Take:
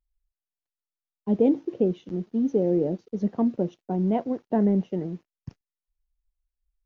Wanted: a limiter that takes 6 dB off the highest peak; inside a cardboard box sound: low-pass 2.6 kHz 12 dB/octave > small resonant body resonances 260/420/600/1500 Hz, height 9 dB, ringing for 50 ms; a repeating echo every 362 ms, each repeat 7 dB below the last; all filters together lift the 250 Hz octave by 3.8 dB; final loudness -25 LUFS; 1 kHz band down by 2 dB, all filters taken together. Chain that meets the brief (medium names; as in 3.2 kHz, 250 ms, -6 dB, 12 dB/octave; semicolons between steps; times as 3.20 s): peaking EQ 250 Hz +5 dB; peaking EQ 1 kHz -4 dB; peak limiter -14 dBFS; low-pass 2.6 kHz 12 dB/octave; feedback delay 362 ms, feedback 45%, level -7 dB; small resonant body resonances 260/420/600/1500 Hz, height 9 dB, ringing for 50 ms; trim -6.5 dB